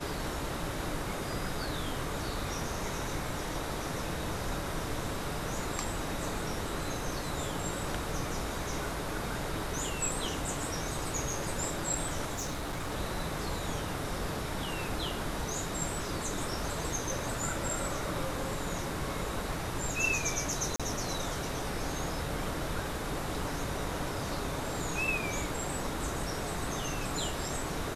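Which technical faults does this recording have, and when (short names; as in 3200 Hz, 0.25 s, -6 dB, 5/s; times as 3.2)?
12.33–12.93 clipped -31.5 dBFS
20.76–20.8 gap 36 ms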